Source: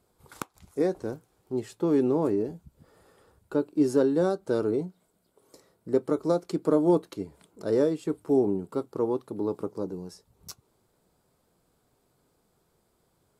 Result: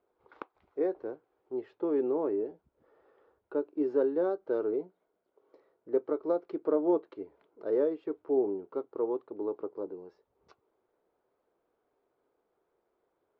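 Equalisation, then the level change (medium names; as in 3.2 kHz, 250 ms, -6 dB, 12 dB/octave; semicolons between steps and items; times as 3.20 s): low-pass 2.6 kHz 12 dB/octave; distance through air 200 m; resonant low shelf 250 Hz -14 dB, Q 1.5; -5.5 dB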